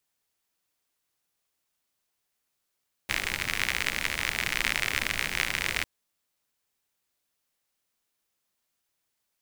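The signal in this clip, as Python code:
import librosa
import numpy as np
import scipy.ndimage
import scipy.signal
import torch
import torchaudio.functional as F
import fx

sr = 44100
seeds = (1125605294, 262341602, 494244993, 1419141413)

y = fx.rain(sr, seeds[0], length_s=2.75, drops_per_s=67.0, hz=2100.0, bed_db=-8.0)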